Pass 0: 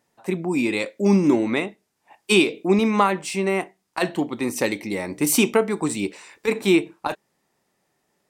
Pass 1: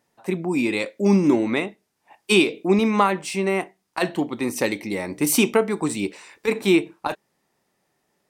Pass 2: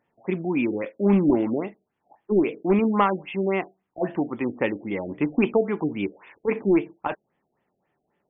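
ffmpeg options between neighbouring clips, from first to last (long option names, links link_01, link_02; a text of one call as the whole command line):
ffmpeg -i in.wav -af "equalizer=frequency=7400:width_type=o:width=0.27:gain=-2.5" out.wav
ffmpeg -i in.wav -af "aeval=exprs='clip(val(0),-1,0.237)':channel_layout=same,acrusher=bits=6:mode=log:mix=0:aa=0.000001,afftfilt=real='re*lt(b*sr/1024,750*pow(3600/750,0.5+0.5*sin(2*PI*3.7*pts/sr)))':imag='im*lt(b*sr/1024,750*pow(3600/750,0.5+0.5*sin(2*PI*3.7*pts/sr)))':win_size=1024:overlap=0.75,volume=-1.5dB" out.wav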